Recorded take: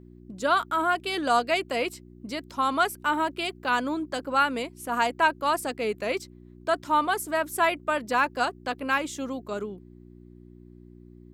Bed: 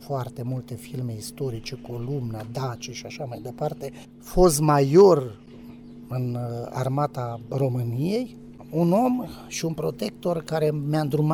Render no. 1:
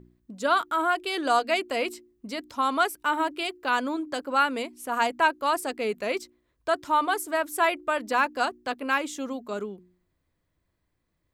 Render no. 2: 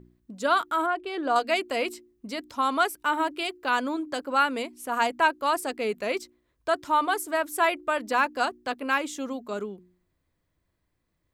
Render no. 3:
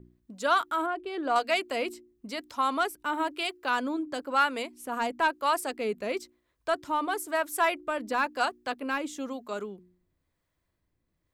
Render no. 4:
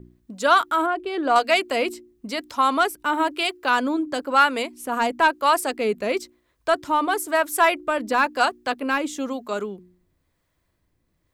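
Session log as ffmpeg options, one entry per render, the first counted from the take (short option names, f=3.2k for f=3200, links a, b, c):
-af "bandreject=f=60:t=h:w=4,bandreject=f=120:t=h:w=4,bandreject=f=180:t=h:w=4,bandreject=f=240:t=h:w=4,bandreject=f=300:t=h:w=4,bandreject=f=360:t=h:w=4"
-filter_complex "[0:a]asettb=1/sr,asplit=3[a][b][c];[a]atrim=end=0.864[d];[b]atrim=start=0.86:end=1.36,asetpts=PTS-STARTPTS,afade=t=in:d=0.004:c=qsin,afade=t=out:st=0.496:d=0.004:c=qsin,lowpass=f=1.2k:p=1[e];[c]atrim=start=1.356[f];[d][e]acrossfade=d=0.004:c1=hsin:c2=qsin[g];[g][f]acrossfade=d=0.004:c1=qsin:c2=hsin"
-filter_complex "[0:a]asoftclip=type=tanh:threshold=-11.5dB,acrossover=split=510[a][b];[a]aeval=exprs='val(0)*(1-0.5/2+0.5/2*cos(2*PI*1*n/s))':c=same[c];[b]aeval=exprs='val(0)*(1-0.5/2-0.5/2*cos(2*PI*1*n/s))':c=same[d];[c][d]amix=inputs=2:normalize=0"
-af "volume=7.5dB"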